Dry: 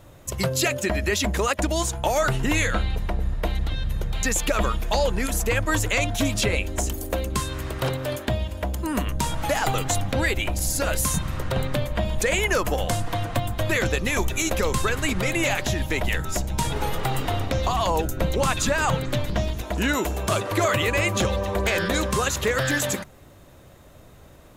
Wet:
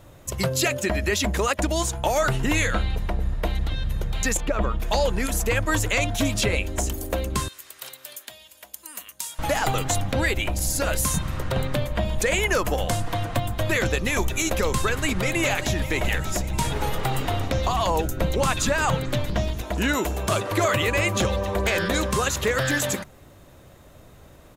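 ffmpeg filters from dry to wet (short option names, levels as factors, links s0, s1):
-filter_complex "[0:a]asettb=1/sr,asplit=3[s0][s1][s2];[s0]atrim=end=4.374[s3];[s1]atrim=start=4.37:end=4.8,asetpts=PTS-STARTPTS,afade=t=in:d=0.004:c=qsin,afade=t=out:st=0.426:d=0.004:c=qsin,lowpass=f=1100:p=1[s4];[s2]atrim=start=4.796[s5];[s3][s4]acrossfade=d=0.004:c1=hsin:c2=qsin[s6];[s6][s5]acrossfade=d=0.004:c1=qsin:c2=hsin,asettb=1/sr,asplit=3[s7][s8][s9];[s7]atrim=end=7.484[s10];[s8]atrim=start=7.48:end=9.39,asetpts=PTS-STARTPTS,afade=t=in:d=0.004:c=qsin,afade=t=out:st=1.906:d=0.004:c=qsin,aderivative[s11];[s9]atrim=start=9.386[s12];[s10][s11]acrossfade=d=0.004:c1=hsin:c2=qsin[s13];[s13][s12]acrossfade=d=0.004:c1=qsin:c2=hsin,asplit=2[s14][s15];[s15]afade=t=in:st=14.77:d=0.01,afade=t=out:st=15.82:d=0.01,aecho=0:1:590|1180|1770|2360|2950|3540:0.223872|0.12313|0.0677213|0.0372467|0.0204857|0.0112671[s16];[s14][s16]amix=inputs=2:normalize=0"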